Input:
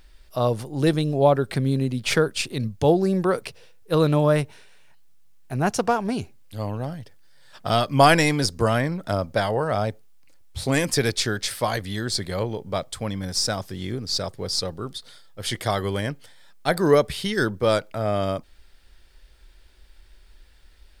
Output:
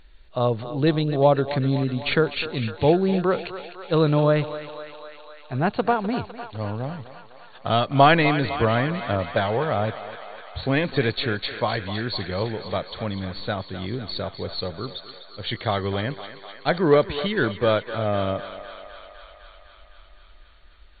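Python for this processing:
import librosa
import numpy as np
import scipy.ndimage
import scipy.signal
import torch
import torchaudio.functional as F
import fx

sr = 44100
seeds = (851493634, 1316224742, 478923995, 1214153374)

y = fx.brickwall_lowpass(x, sr, high_hz=4500.0)
y = fx.echo_thinned(y, sr, ms=253, feedback_pct=78, hz=470.0, wet_db=-11)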